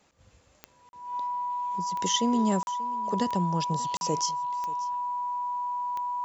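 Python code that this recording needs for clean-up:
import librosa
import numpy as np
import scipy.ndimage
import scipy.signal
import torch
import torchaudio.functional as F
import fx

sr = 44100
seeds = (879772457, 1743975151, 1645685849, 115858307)

y = fx.fix_declick_ar(x, sr, threshold=10.0)
y = fx.notch(y, sr, hz=980.0, q=30.0)
y = fx.fix_interpolate(y, sr, at_s=(0.89, 2.63, 3.97), length_ms=41.0)
y = fx.fix_echo_inverse(y, sr, delay_ms=585, level_db=-20.0)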